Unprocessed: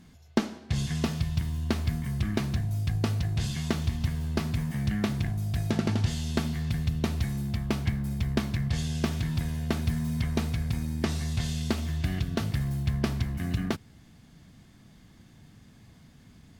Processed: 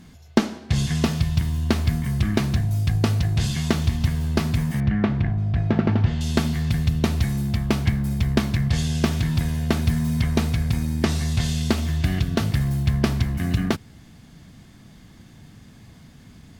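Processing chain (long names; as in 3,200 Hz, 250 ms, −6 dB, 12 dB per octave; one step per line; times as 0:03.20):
0:04.80–0:06.21: low-pass filter 2,100 Hz 12 dB per octave
level +7 dB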